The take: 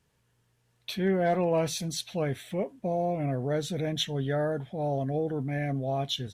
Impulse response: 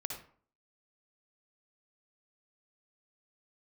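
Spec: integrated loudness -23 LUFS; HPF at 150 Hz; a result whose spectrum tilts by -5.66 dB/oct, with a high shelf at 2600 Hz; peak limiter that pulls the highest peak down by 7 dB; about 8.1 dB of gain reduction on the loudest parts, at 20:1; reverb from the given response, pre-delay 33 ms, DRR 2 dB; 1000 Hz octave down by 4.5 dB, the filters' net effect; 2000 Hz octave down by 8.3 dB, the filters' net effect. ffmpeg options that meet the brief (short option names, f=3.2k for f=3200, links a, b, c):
-filter_complex "[0:a]highpass=150,equalizer=f=1k:t=o:g=-6.5,equalizer=f=2k:t=o:g=-6.5,highshelf=f=2.6k:g=-4.5,acompressor=threshold=-31dB:ratio=20,alimiter=level_in=7.5dB:limit=-24dB:level=0:latency=1,volume=-7.5dB,asplit=2[a][b];[1:a]atrim=start_sample=2205,adelay=33[c];[b][c]afir=irnorm=-1:irlink=0,volume=-2dB[d];[a][d]amix=inputs=2:normalize=0,volume=15dB"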